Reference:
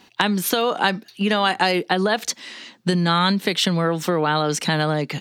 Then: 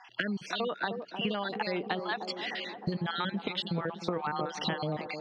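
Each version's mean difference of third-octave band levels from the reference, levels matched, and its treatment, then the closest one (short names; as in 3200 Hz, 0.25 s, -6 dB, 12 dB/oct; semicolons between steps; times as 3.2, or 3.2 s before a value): 9.0 dB: random spectral dropouts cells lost 45%; LPF 4400 Hz 24 dB/oct; compressor 6:1, threshold -34 dBFS, peak gain reduction 18 dB; on a send: band-limited delay 0.307 s, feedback 67%, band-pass 450 Hz, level -6 dB; on the sum: gain +3 dB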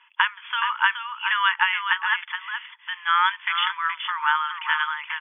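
19.5 dB: dynamic EQ 1700 Hz, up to +4 dB, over -30 dBFS, Q 1.1; brick-wall FIR band-pass 870–3500 Hz; air absorption 120 m; echo 0.422 s -7.5 dB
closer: first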